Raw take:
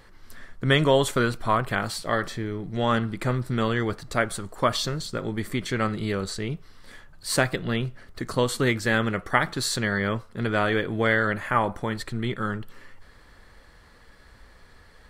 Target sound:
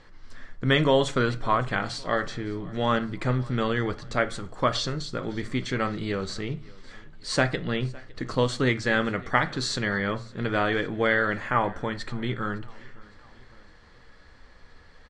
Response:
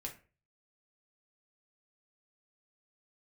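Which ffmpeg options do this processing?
-filter_complex "[0:a]lowpass=f=6.9k:w=0.5412,lowpass=f=6.9k:w=1.3066,aecho=1:1:559|1118|1677:0.0668|0.0348|0.0181,asplit=2[a][b];[1:a]atrim=start_sample=2205[c];[b][c]afir=irnorm=-1:irlink=0,volume=-3.5dB[d];[a][d]amix=inputs=2:normalize=0,volume=-4dB"

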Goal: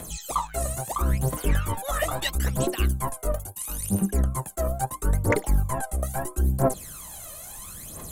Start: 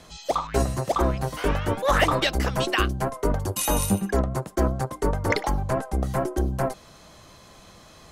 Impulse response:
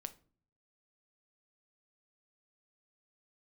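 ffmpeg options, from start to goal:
-filter_complex "[0:a]aexciter=amount=12.7:drive=6.5:freq=7.6k,areverse,acompressor=threshold=-25dB:ratio=8,areverse,aphaser=in_gain=1:out_gain=1:delay=1.7:decay=0.73:speed=0.75:type=triangular,acrossover=split=6900[a][b];[b]acompressor=threshold=-38dB:ratio=4:attack=1:release=60[c];[a][c]amix=inputs=2:normalize=0"

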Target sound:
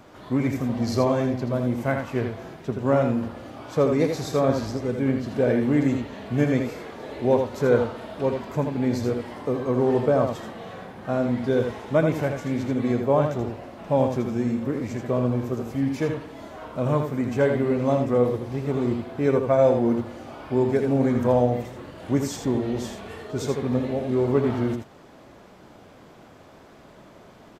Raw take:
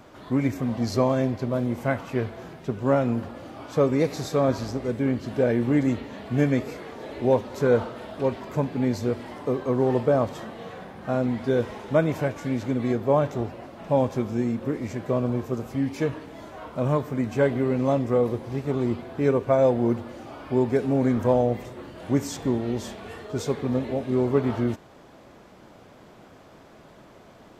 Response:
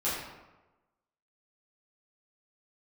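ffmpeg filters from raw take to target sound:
-af "aecho=1:1:81:0.501"

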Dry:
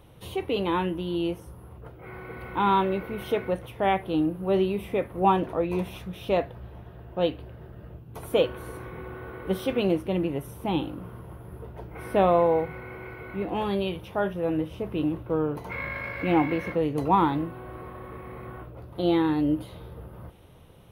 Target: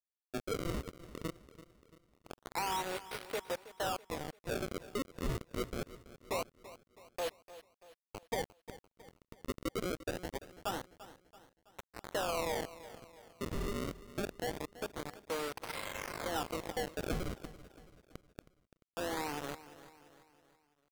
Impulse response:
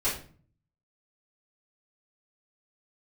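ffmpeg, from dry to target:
-filter_complex "[0:a]acrossover=split=440 3400:gain=0.0891 1 0.112[a][b][c];[a][b][c]amix=inputs=3:normalize=0,acrossover=split=420|850|3000[d][e][f][g];[d]acompressor=threshold=-49dB:ratio=4[h];[e]acompressor=threshold=-37dB:ratio=4[i];[f]acompressor=threshold=-43dB:ratio=4[j];[g]acompressor=threshold=-54dB:ratio=4[k];[h][i][j][k]amix=inputs=4:normalize=0,acrusher=bits=5:mix=0:aa=0.000001,aresample=22050,aresample=44100,acrusher=samples=30:mix=1:aa=0.000001:lfo=1:lforange=48:lforate=0.24,asplit=2[l][m];[m]aecho=0:1:333|666|999|1332:0.158|0.0761|0.0365|0.0175[n];[l][n]amix=inputs=2:normalize=0,asetrate=42845,aresample=44100,atempo=1.0293,volume=-2dB"

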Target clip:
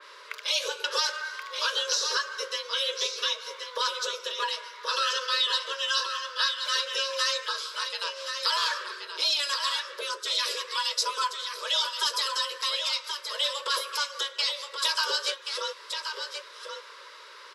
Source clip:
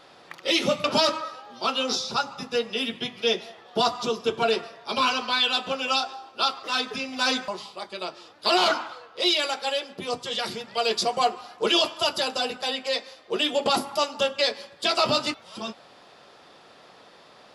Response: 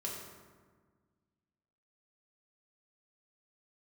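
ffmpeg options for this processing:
-filter_complex "[0:a]asplit=3[a][b][c];[a]afade=t=out:st=8.78:d=0.02[d];[b]asubboost=boost=12:cutoff=140,afade=t=in:st=8.78:d=0.02,afade=t=out:st=9.52:d=0.02[e];[c]afade=t=in:st=9.52:d=0.02[f];[d][e][f]amix=inputs=3:normalize=0,acompressor=threshold=-35dB:ratio=2.5,afreqshift=280,asuperstop=centerf=750:order=8:qfactor=2.2,aecho=1:1:1078:0.473,adynamicequalizer=threshold=0.00891:dfrequency=3100:dqfactor=0.7:tfrequency=3100:tqfactor=0.7:attack=5:release=100:ratio=0.375:range=2.5:mode=boostabove:tftype=highshelf,volume=4.5dB"

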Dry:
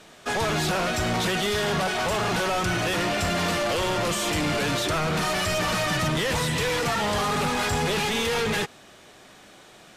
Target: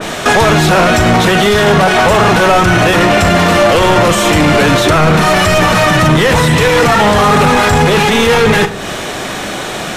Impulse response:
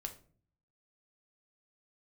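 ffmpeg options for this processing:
-filter_complex "[0:a]bandreject=f=4.7k:w=23,asplit=2[a][b];[1:a]atrim=start_sample=2205,adelay=39[c];[b][c]afir=irnorm=-1:irlink=0,volume=-13dB[d];[a][d]amix=inputs=2:normalize=0,acompressor=threshold=-38dB:ratio=2,alimiter=level_in=31dB:limit=-1dB:release=50:level=0:latency=1,adynamicequalizer=threshold=0.0794:dfrequency=2500:dqfactor=0.7:tfrequency=2500:tqfactor=0.7:attack=5:release=100:ratio=0.375:range=3:mode=cutabove:tftype=highshelf,volume=-1dB"

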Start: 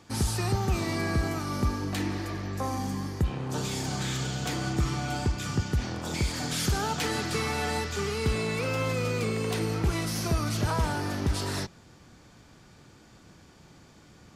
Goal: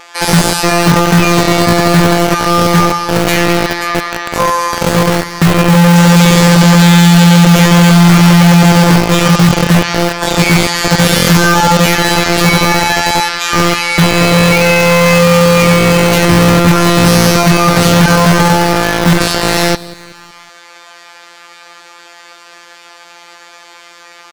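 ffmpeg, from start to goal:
-filter_complex "[0:a]highpass=f=84:p=1,equalizer=f=130:w=2.3:g=14.5,bandreject=f=60:t=h:w=6,bandreject=f=120:t=h:w=6,bandreject=f=180:t=h:w=6,bandreject=f=240:t=h:w=6,bandreject=f=300:t=h:w=6,bandreject=f=360:t=h:w=6,afftfilt=real='hypot(re,im)*cos(PI*b)':imag='0':win_size=1024:overlap=0.75,acrossover=split=470|2600[a][b][c];[a]acrusher=bits=4:mix=0:aa=0.000001[d];[b]crystalizer=i=9.5:c=0[e];[d][e][c]amix=inputs=3:normalize=0,atempo=0.59,apsyclip=25dB,asplit=2[f][g];[g]aecho=0:1:186|372|558|744:0.106|0.053|0.0265|0.0132[h];[f][h]amix=inputs=2:normalize=0,volume=-3dB"

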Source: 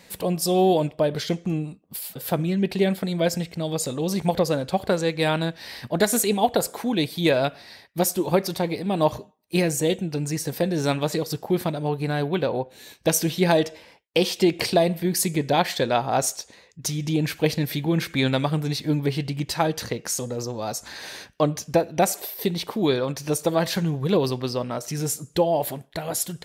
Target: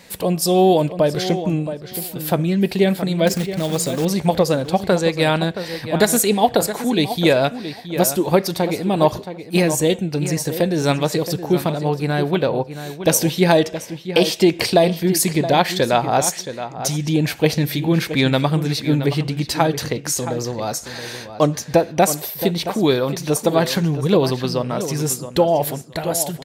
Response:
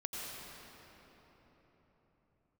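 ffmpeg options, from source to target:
-filter_complex "[0:a]asettb=1/sr,asplit=3[a][b][c];[a]atrim=end=3.274[d];[b]atrim=start=3.27:end=4.05,asetpts=PTS-STARTPTS,afade=t=in:d=0.004:c=qsin,afade=t=out:st=0.776:d=0.004:c=qsin,acrusher=bits=3:mode=log:mix=0:aa=0.000001[e];[c]atrim=start=4.046[f];[d][e]acrossfade=d=0.004:c1=hsin:c2=qsin[g];[g][f]acrossfade=d=0.004:c1=qsin:c2=hsin,asplit=2[h][i];[i]adelay=672,lowpass=f=3.7k:p=1,volume=-11dB,asplit=2[j][k];[k]adelay=672,lowpass=f=3.7k:p=1,volume=0.18[l];[h][j][l]amix=inputs=3:normalize=0,volume=5dB"

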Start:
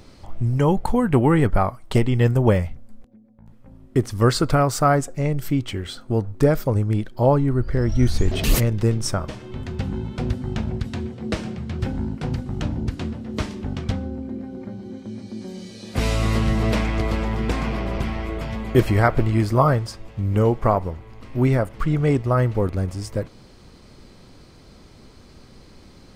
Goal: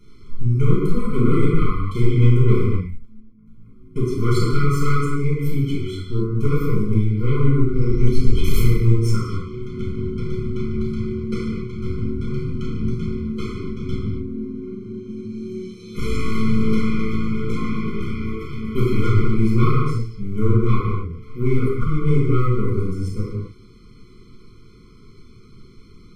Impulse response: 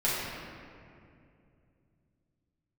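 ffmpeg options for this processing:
-filter_complex "[0:a]aeval=exprs='0.794*(cos(1*acos(clip(val(0)/0.794,-1,1)))-cos(1*PI/2))+0.158*(cos(5*acos(clip(val(0)/0.794,-1,1)))-cos(5*PI/2))+0.126*(cos(8*acos(clip(val(0)/0.794,-1,1)))-cos(8*PI/2))':c=same[a];[1:a]atrim=start_sample=2205,afade=t=out:st=0.34:d=0.01,atrim=end_sample=15435[b];[a][b]afir=irnorm=-1:irlink=0,afftfilt=real='re*eq(mod(floor(b*sr/1024/500),2),0)':imag='im*eq(mod(floor(b*sr/1024/500),2),0)':win_size=1024:overlap=0.75,volume=-16.5dB"

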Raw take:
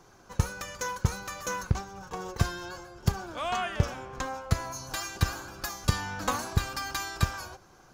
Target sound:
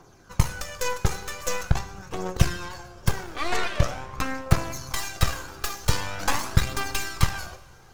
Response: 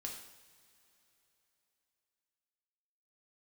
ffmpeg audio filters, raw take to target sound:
-filter_complex "[0:a]aeval=exprs='0.251*(cos(1*acos(clip(val(0)/0.251,-1,1)))-cos(1*PI/2))+0.0631*(cos(8*acos(clip(val(0)/0.251,-1,1)))-cos(8*PI/2))':c=same,aphaser=in_gain=1:out_gain=1:delay=2.6:decay=0.43:speed=0.44:type=triangular,asplit=2[a][b];[1:a]atrim=start_sample=2205[c];[b][c]afir=irnorm=-1:irlink=0,volume=-2.5dB[d];[a][d]amix=inputs=2:normalize=0,volume=-2.5dB"

